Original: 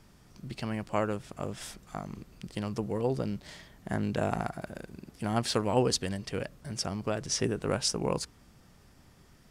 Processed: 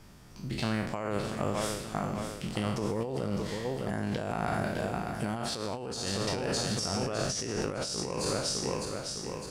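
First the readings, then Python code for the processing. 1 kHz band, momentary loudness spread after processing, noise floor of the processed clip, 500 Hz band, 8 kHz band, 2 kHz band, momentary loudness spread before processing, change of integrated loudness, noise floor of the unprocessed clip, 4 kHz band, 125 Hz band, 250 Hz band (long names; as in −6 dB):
+1.0 dB, 5 LU, −42 dBFS, 0.0 dB, +1.5 dB, +3.0 dB, 14 LU, 0.0 dB, −59 dBFS, +1.5 dB, +0.5 dB, +0.5 dB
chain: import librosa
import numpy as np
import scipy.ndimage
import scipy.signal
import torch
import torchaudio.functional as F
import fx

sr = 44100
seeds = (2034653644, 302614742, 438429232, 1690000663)

p1 = fx.spec_trails(x, sr, decay_s=0.78)
p2 = p1 + fx.echo_feedback(p1, sr, ms=607, feedback_pct=54, wet_db=-9.0, dry=0)
y = fx.over_compress(p2, sr, threshold_db=-32.0, ratio=-1.0)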